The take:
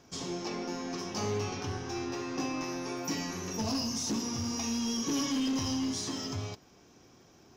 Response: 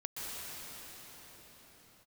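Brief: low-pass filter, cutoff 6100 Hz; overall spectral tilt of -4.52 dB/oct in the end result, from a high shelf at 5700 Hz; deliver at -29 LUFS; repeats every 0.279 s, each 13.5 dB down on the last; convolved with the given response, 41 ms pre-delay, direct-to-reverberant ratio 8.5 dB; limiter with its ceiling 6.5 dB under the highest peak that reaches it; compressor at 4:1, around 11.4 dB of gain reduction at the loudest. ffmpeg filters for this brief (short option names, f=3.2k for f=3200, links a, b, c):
-filter_complex "[0:a]lowpass=6.1k,highshelf=f=5.7k:g=-5,acompressor=threshold=-43dB:ratio=4,alimiter=level_in=16.5dB:limit=-24dB:level=0:latency=1,volume=-16.5dB,aecho=1:1:279|558:0.211|0.0444,asplit=2[a][b];[1:a]atrim=start_sample=2205,adelay=41[c];[b][c]afir=irnorm=-1:irlink=0,volume=-11.5dB[d];[a][d]amix=inputs=2:normalize=0,volume=18.5dB"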